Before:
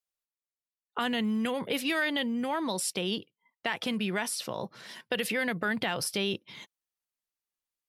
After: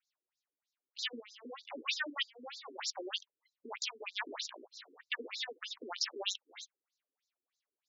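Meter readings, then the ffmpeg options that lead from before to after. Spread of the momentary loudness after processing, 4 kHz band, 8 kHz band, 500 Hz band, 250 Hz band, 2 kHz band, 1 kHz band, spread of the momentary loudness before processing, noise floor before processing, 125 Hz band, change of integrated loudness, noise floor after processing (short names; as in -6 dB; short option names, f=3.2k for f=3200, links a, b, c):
16 LU, -4.0 dB, -8.5 dB, -14.0 dB, -21.0 dB, -9.5 dB, -12.0 dB, 10 LU, under -85 dBFS, under -35 dB, -8.5 dB, under -85 dBFS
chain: -af "aderivative,alimiter=level_in=3.5dB:limit=-24dB:level=0:latency=1:release=118,volume=-3.5dB,aeval=exprs='max(val(0),0)':c=same,afftfilt=real='re*between(b*sr/1024,310*pow(5300/310,0.5+0.5*sin(2*PI*3.2*pts/sr))/1.41,310*pow(5300/310,0.5+0.5*sin(2*PI*3.2*pts/sr))*1.41)':imag='im*between(b*sr/1024,310*pow(5300/310,0.5+0.5*sin(2*PI*3.2*pts/sr))/1.41,310*pow(5300/310,0.5+0.5*sin(2*PI*3.2*pts/sr))*1.41)':win_size=1024:overlap=0.75,volume=15.5dB"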